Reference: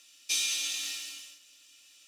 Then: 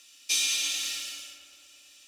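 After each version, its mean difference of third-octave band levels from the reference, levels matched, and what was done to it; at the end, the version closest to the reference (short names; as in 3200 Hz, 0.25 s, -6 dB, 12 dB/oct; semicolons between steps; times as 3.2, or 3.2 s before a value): 1.5 dB: darkening echo 0.115 s, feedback 77%, low-pass 3000 Hz, level -7 dB; gain +3 dB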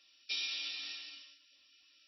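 7.0 dB: gain -5.5 dB; MP3 24 kbps 16000 Hz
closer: first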